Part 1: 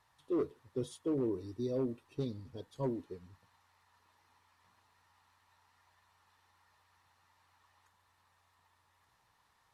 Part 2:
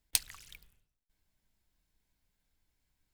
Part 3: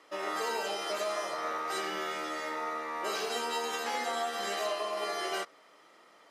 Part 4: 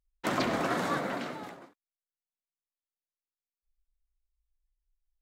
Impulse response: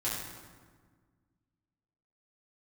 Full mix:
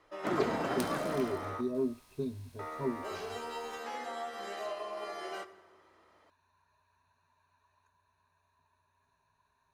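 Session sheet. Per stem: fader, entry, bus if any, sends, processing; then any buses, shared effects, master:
−3.0 dB, 0.00 s, no send, EQ curve with evenly spaced ripples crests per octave 1.5, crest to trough 15 dB
−8.0 dB, 0.65 s, no send, compressor on every frequency bin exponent 0.4
−5.5 dB, 0.00 s, muted 0:01.61–0:02.59, send −16.5 dB, no processing
−3.5 dB, 0.00 s, no send, no processing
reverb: on, RT60 1.6 s, pre-delay 4 ms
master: high-shelf EQ 2,200 Hz −9 dB

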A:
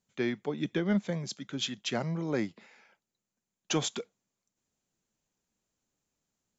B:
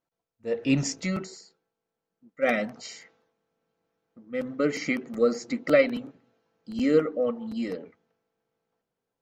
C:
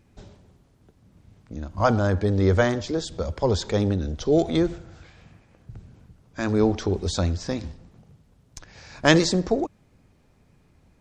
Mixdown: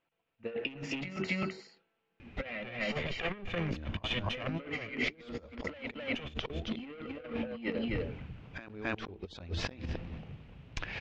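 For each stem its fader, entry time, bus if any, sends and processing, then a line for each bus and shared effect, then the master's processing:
−1.0 dB, 2.45 s, no send, echo send −21 dB, lower of the sound and its delayed copy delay 1.7 ms
−2.5 dB, 0.00 s, no send, echo send −4 dB, mains-hum notches 50/100/150/200/250/300 Hz; soft clipping −24.5 dBFS, distortion −7 dB
0.0 dB, 2.20 s, no send, echo send −13.5 dB, hum removal 111.7 Hz, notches 4; gate with flip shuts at −15 dBFS, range −30 dB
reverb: not used
echo: single-tap delay 262 ms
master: compressor whose output falls as the input rises −37 dBFS, ratio −0.5; low-pass with resonance 2,700 Hz, resonance Q 3.4

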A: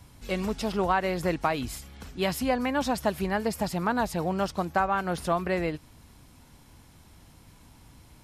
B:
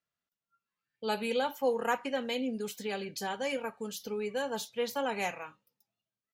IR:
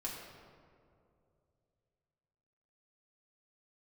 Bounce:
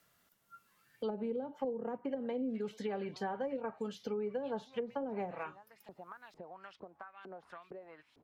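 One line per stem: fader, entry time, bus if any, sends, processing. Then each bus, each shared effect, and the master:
−20.0 dB, 2.25 s, no send, auto-filter band-pass saw up 2.2 Hz 350–4,000 Hz; downward compressor 6 to 1, threshold −41 dBFS, peak gain reduction 15.5 dB
−1.5 dB, 0.00 s, no send, notch filter 2,500 Hz, Q 20; treble cut that deepens with the level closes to 370 Hz, closed at −28 dBFS; high-shelf EQ 10,000 Hz +11.5 dB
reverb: not used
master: multiband upward and downward compressor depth 70%

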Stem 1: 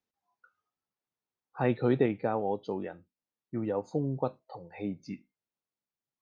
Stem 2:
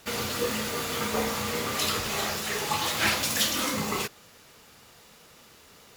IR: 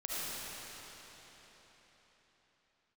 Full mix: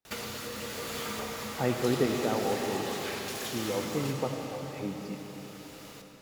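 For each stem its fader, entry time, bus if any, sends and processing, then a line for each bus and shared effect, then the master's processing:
−4.5 dB, 0.00 s, send −4 dB, no processing
+1.0 dB, 0.05 s, send −7 dB, downward compressor 6 to 1, threshold −37 dBFS, peak gain reduction 15.5 dB; automatic ducking −6 dB, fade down 0.45 s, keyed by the first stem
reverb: on, RT60 4.4 s, pre-delay 30 ms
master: no processing

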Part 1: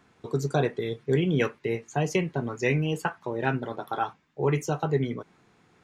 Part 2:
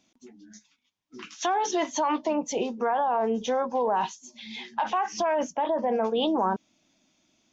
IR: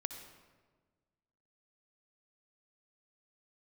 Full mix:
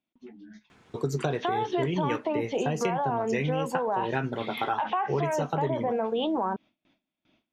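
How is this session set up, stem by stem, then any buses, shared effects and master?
+3.0 dB, 0.70 s, no send, no processing
+3.0 dB, 0.00 s, no send, low-pass filter 3,400 Hz 24 dB per octave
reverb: not used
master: noise gate with hold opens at −55 dBFS; downward compressor, threshold −24 dBFS, peak gain reduction 9.5 dB

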